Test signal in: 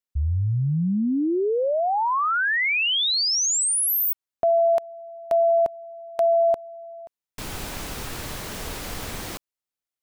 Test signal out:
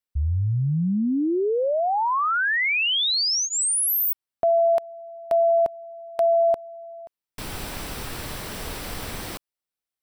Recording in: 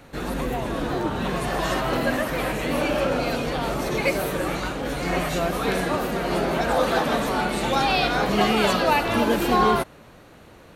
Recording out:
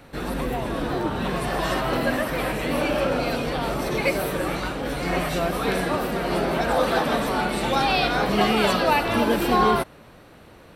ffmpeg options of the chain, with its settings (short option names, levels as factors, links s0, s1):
-af "bandreject=f=6700:w=6.7"